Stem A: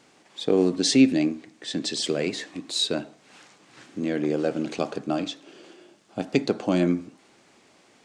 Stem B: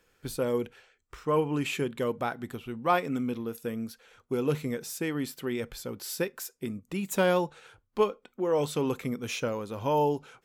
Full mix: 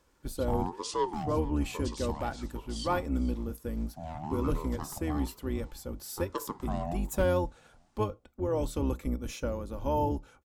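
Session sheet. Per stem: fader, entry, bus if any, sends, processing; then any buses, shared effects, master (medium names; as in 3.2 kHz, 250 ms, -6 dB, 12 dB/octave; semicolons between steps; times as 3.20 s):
-9.5 dB, 0.00 s, no send, echo send -18.5 dB, ring modulator with a swept carrier 570 Hz, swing 30%, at 1.1 Hz
-4.0 dB, 0.00 s, no send, no echo send, octave divider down 2 oct, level +3 dB; comb 3.5 ms, depth 41%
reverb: none
echo: feedback delay 456 ms, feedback 18%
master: peaking EQ 2.6 kHz -7 dB 1.7 oct; hard clipper -17.5 dBFS, distortion -39 dB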